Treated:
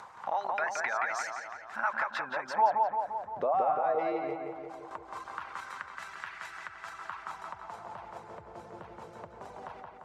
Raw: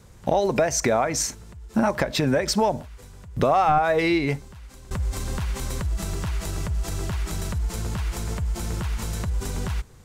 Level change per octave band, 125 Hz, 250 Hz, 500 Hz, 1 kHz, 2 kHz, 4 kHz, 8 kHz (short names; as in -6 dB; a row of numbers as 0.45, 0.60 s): -30.0 dB, -20.0 dB, -10.0 dB, -4.5 dB, -4.0 dB, -17.5 dB, under -20 dB